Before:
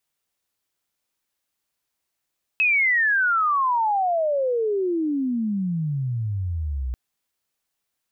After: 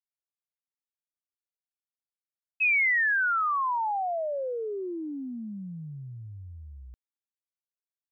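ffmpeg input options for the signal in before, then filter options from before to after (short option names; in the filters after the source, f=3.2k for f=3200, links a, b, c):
-f lavfi -i "aevalsrc='pow(10,(-16-8*t/4.34)/20)*sin(2*PI*2600*4.34/log(60/2600)*(exp(log(60/2600)*t/4.34)-1))':d=4.34:s=44100"
-af "agate=range=-33dB:threshold=-16dB:ratio=3:detection=peak"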